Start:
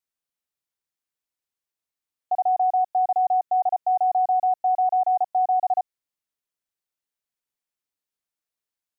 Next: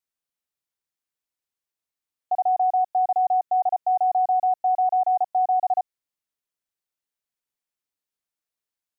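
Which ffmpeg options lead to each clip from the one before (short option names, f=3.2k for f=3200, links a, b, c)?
-af anull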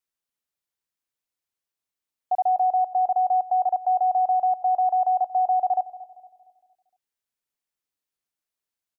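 -filter_complex "[0:a]asplit=2[a][b];[b]adelay=231,lowpass=f=870:p=1,volume=-15dB,asplit=2[c][d];[d]adelay=231,lowpass=f=870:p=1,volume=0.53,asplit=2[e][f];[f]adelay=231,lowpass=f=870:p=1,volume=0.53,asplit=2[g][h];[h]adelay=231,lowpass=f=870:p=1,volume=0.53,asplit=2[i][j];[j]adelay=231,lowpass=f=870:p=1,volume=0.53[k];[a][c][e][g][i][k]amix=inputs=6:normalize=0"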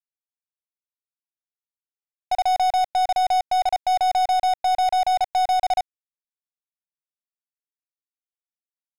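-af "aeval=exprs='0.158*(cos(1*acos(clip(val(0)/0.158,-1,1)))-cos(1*PI/2))+0.00794*(cos(4*acos(clip(val(0)/0.158,-1,1)))-cos(4*PI/2))+0.02*(cos(7*acos(clip(val(0)/0.158,-1,1)))-cos(7*PI/2))':c=same,adynamicsmooth=sensitivity=4.5:basefreq=770,aeval=exprs='sgn(val(0))*max(abs(val(0))-0.00596,0)':c=same,volume=2dB"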